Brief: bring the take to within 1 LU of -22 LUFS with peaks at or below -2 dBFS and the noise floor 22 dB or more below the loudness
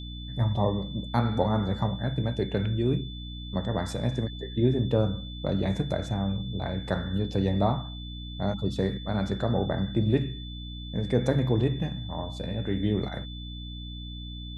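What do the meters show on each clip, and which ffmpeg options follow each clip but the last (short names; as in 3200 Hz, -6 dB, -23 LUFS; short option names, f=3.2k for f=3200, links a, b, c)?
hum 60 Hz; harmonics up to 300 Hz; hum level -37 dBFS; steady tone 3500 Hz; tone level -43 dBFS; loudness -29.0 LUFS; peak -10.0 dBFS; loudness target -22.0 LUFS
-> -af "bandreject=f=60:t=h:w=4,bandreject=f=120:t=h:w=4,bandreject=f=180:t=h:w=4,bandreject=f=240:t=h:w=4,bandreject=f=300:t=h:w=4"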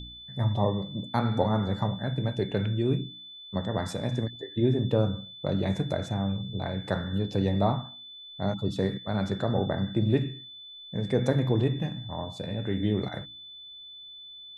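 hum none; steady tone 3500 Hz; tone level -43 dBFS
-> -af "bandreject=f=3.5k:w=30"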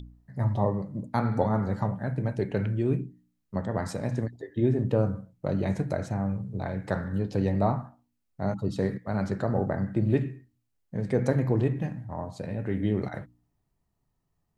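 steady tone none; loudness -29.0 LUFS; peak -9.5 dBFS; loudness target -22.0 LUFS
-> -af "volume=7dB"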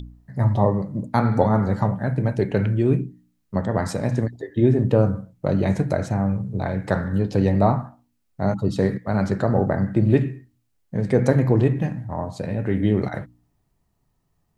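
loudness -22.0 LUFS; peak -2.5 dBFS; noise floor -70 dBFS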